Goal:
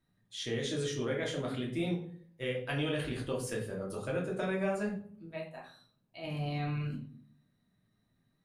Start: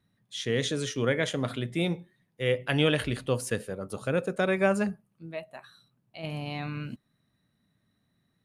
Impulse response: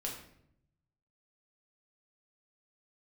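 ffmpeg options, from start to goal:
-filter_complex "[0:a]acompressor=threshold=0.0398:ratio=3[s0];[1:a]atrim=start_sample=2205,asetrate=70560,aresample=44100[s1];[s0][s1]afir=irnorm=-1:irlink=0"

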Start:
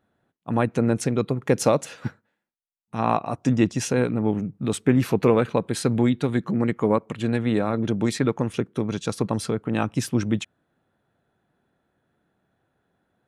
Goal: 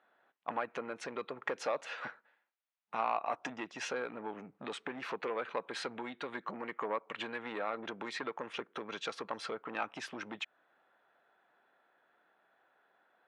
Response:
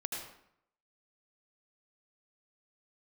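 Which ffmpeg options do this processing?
-af "acompressor=threshold=0.0398:ratio=6,asoftclip=type=tanh:threshold=0.0562,highpass=760,lowpass=2700,volume=2.11"

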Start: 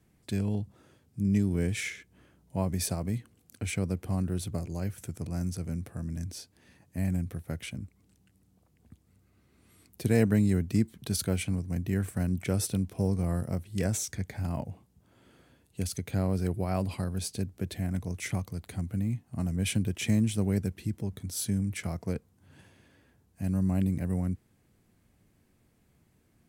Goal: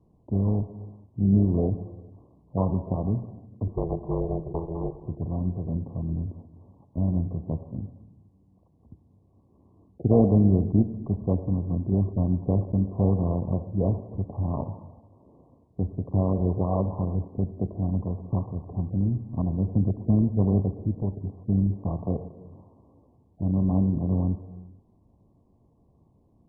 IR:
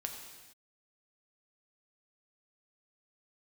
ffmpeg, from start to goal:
-filter_complex "[0:a]asettb=1/sr,asplit=3[s0][s1][s2];[s0]atrim=end=3.684[s3];[s1]atrim=start=3.68:end=5.02,asetpts=PTS-STARTPTS,afade=t=in:d=0.004:c=qsin,afade=t=out:st=1.336:d=0.004:c=qsin,aeval=exprs='val(0)*sin(2*PI*250*n/s)':c=same[s4];[s2]atrim=start=5.016[s5];[s3][s4]acrossfade=d=0.004:c1=hsin:c2=qsin[s6];[s6][s5]acrossfade=d=0.004:c1=qsin:c2=hsin,asplit=2[s7][s8];[1:a]atrim=start_sample=2205,lowpass=4900[s9];[s8][s9]afir=irnorm=-1:irlink=0,volume=0.944[s10];[s7][s10]amix=inputs=2:normalize=0" -ar 24000 -c:a mp2 -b:a 8k

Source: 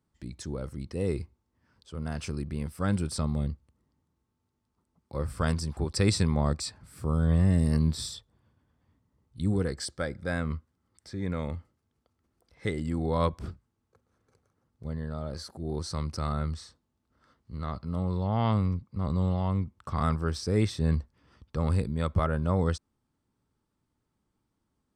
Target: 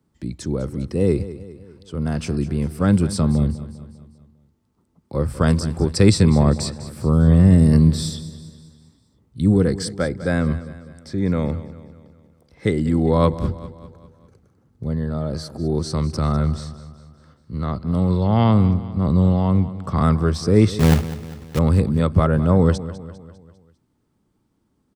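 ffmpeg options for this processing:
-filter_complex "[0:a]acrossover=split=110|520|2200[s0][s1][s2][s3];[s1]acontrast=66[s4];[s0][s4][s2][s3]amix=inputs=4:normalize=0,asettb=1/sr,asplit=3[s5][s6][s7];[s5]atrim=end=13.334[s8];[s6]atrim=start=13.33:end=14.85,asetpts=PTS-STARTPTS,afade=t=in:d=0.004:c=qsin,afade=t=out:st=1.516:d=0.004:c=qsin,lowshelf=f=240:g=6.5[s9];[s7]atrim=start=14.846[s10];[s8][s9]acrossfade=d=0.004:c1=hsin:c2=qsin[s11];[s11][s10]acrossfade=d=0.004:c1=qsin:c2=hsin,asettb=1/sr,asplit=3[s12][s13][s14];[s12]atrim=end=20.794[s15];[s13]atrim=start=20.79:end=21.59,asetpts=PTS-STARTPTS,afade=t=in:d=0.004:c=qsin,afade=t=out:st=0.796:d=0.004:c=qsin,acrusher=bits=2:mode=log:mix=0:aa=0.000001[s16];[s14]atrim=start=21.586[s17];[s15][s16]acrossfade=d=0.004:c1=hsin:c2=qsin[s18];[s18][s17]acrossfade=d=0.004:c1=qsin:c2=hsin,aecho=1:1:200|400|600|800|1000:0.178|0.0889|0.0445|0.0222|0.0111,asettb=1/sr,asplit=3[s19][s20][s21];[s19]atrim=end=17.834[s22];[s20]atrim=start=17.83:end=18.44,asetpts=PTS-STARTPTS,afade=t=in:d=0.004:c=qsin,afade=t=out:st=0.606:d=0.004:c=qsin,adynamicequalizer=threshold=0.00708:dfrequency=1500:dqfactor=0.7:tfrequency=1500:tqfactor=0.7:attack=5:release=100:ratio=0.375:range=2.5:mode=boostabove:tftype=highshelf[s23];[s21]atrim=start=18.436[s24];[s22][s23]acrossfade=d=0.004:c1=hsin:c2=qsin[s25];[s25][s24]acrossfade=d=0.004:c1=qsin:c2=hsin,volume=2.11"

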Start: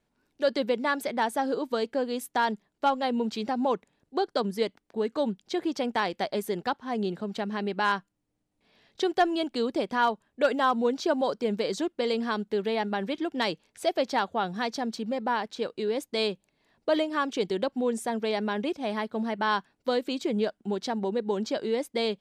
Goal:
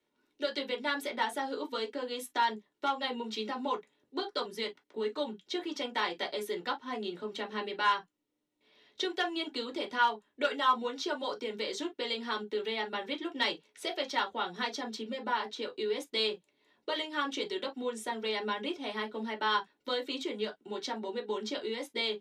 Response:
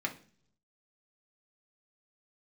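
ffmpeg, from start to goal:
-filter_complex "[0:a]lowshelf=f=230:g=-8.5,acrossover=split=130|840[s0][s1][s2];[s1]acompressor=threshold=0.0141:ratio=6[s3];[s0][s3][s2]amix=inputs=3:normalize=0[s4];[1:a]atrim=start_sample=2205,atrim=end_sample=4410,asetrate=70560,aresample=44100[s5];[s4][s5]afir=irnorm=-1:irlink=0"

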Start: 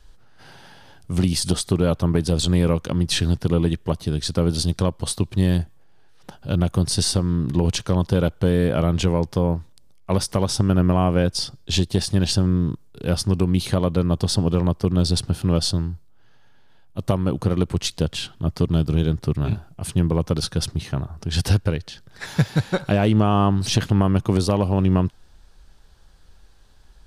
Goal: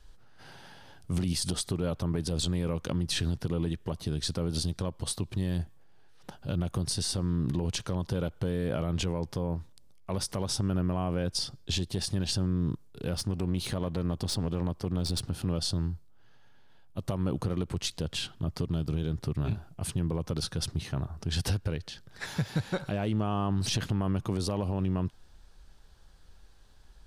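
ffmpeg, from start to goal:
-filter_complex "[0:a]alimiter=limit=0.168:level=0:latency=1:release=87,asettb=1/sr,asplit=3[s0][s1][s2];[s0]atrim=end=13.134[s3];[s1]atrim=start=13.13:end=15.47,asetpts=PTS-STARTPTS,afade=t=in:d=0.004:c=qsin,afade=t=out:st=2.336:d=0.004:c=qsin,aeval=exprs='clip(val(0),-1,0.0422)':c=same[s4];[s2]atrim=start=15.466[s5];[s3][s4]acrossfade=d=0.004:c1=hsin:c2=qsin[s6];[s6][s5]acrossfade=d=0.004:c1=qsin:c2=hsin,volume=0.596"

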